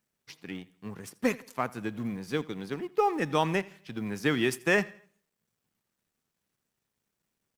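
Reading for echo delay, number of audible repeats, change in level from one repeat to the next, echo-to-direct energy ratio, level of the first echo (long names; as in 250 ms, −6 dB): 83 ms, 2, −8.0 dB, −21.5 dB, −22.0 dB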